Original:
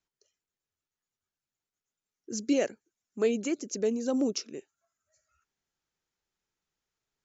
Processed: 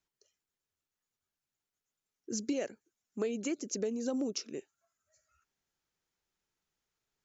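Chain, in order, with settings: compressor 5:1, threshold -31 dBFS, peak gain reduction 9.5 dB

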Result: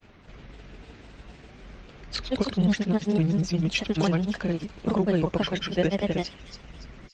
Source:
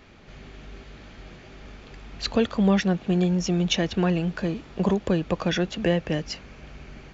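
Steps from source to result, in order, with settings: grains, spray 0.1 s, pitch spread up and down by 3 st; thin delay 0.283 s, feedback 43%, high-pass 4400 Hz, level -3.5 dB; Opus 32 kbps 48000 Hz

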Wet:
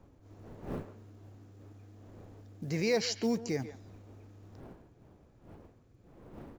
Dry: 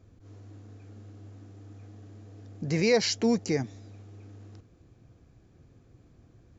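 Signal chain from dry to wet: wind noise 410 Hz -46 dBFS; short-mantissa float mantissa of 4-bit; speakerphone echo 0.14 s, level -12 dB; gain -6 dB

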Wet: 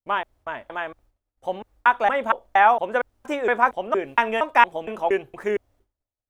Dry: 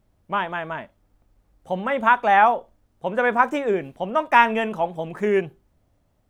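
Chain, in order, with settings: slices in reverse order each 0.232 s, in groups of 2; expander -49 dBFS; bell 170 Hz -14.5 dB 0.73 oct

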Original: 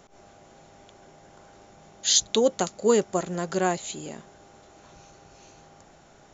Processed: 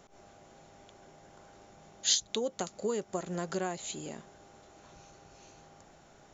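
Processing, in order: 2.14–3.79 compressor 5:1, threshold -26 dBFS, peak gain reduction 10 dB; gain -4 dB

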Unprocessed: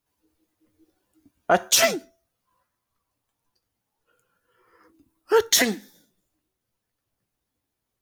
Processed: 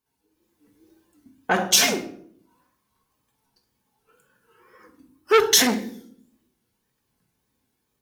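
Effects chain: AGC gain up to 8 dB; notch comb 650 Hz; wow and flutter 110 cents; on a send at -3.5 dB: reverb RT60 0.60 s, pre-delay 5 ms; on the sum: core saturation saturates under 1600 Hz; gain -1.5 dB

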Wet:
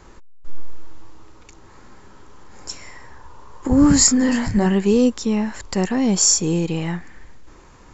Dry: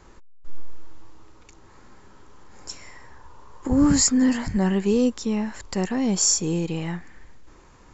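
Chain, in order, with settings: 3.98–4.66 doubler 29 ms -6.5 dB; gain +4.5 dB

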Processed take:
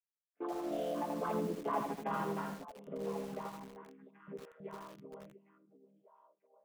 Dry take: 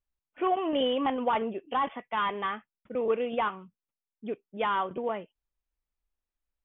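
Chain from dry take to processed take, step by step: chord vocoder minor triad, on C#3; Doppler pass-by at 1.81, 17 m/s, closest 6.2 m; gate -59 dBFS, range -18 dB; in parallel at +3 dB: limiter -29 dBFS, peak gain reduction 10 dB; on the sum: air absorption 350 m; delay with a stepping band-pass 0.697 s, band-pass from 280 Hz, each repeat 1.4 oct, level -9 dB; lo-fi delay 81 ms, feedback 35%, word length 7-bit, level -4.5 dB; gain -7.5 dB

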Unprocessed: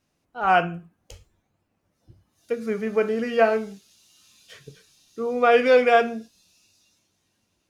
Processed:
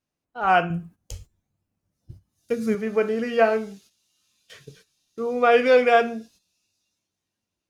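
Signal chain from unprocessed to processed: gate -52 dBFS, range -12 dB; 0.7–2.75 tone controls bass +10 dB, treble +8 dB

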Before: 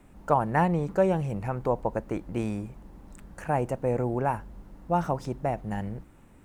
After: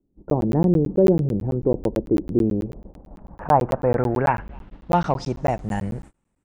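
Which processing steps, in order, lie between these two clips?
speakerphone echo 0.27 s, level -29 dB; in parallel at -6 dB: soft clip -19 dBFS, distortion -14 dB; on the sum: gate -42 dBFS, range -25 dB; low-pass sweep 360 Hz -> 8400 Hz, 2.39–5.77; crackling interface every 0.11 s, samples 512, zero, from 0.3; gain +3 dB

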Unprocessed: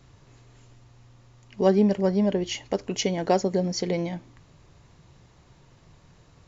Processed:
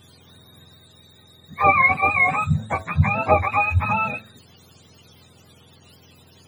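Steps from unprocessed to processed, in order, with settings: spectrum mirrored in octaves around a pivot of 670 Hz; de-hum 108.8 Hz, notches 6; gain +7.5 dB

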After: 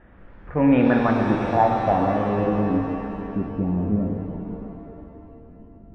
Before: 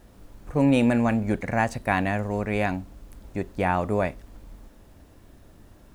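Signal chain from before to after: low-pass sweep 1800 Hz -> 250 Hz, 0.69–2.97; brick-wall FIR low-pass 3800 Hz; shimmer reverb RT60 2.6 s, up +7 st, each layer -8 dB, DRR 1.5 dB

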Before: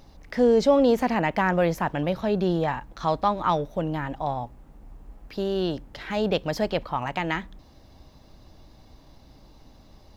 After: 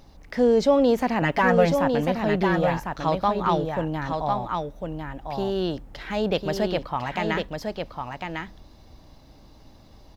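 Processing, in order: 1.21–1.72 comb 7.1 ms, depth 95%; on a send: echo 1.051 s -5 dB

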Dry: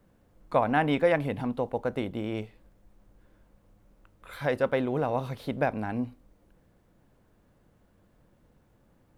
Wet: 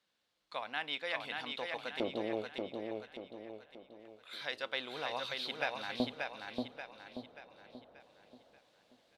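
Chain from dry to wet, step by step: LFO band-pass square 0.25 Hz 640–3900 Hz; vocal rider within 4 dB 0.5 s; feedback echo 0.583 s, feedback 44%, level -4 dB; gain +8 dB

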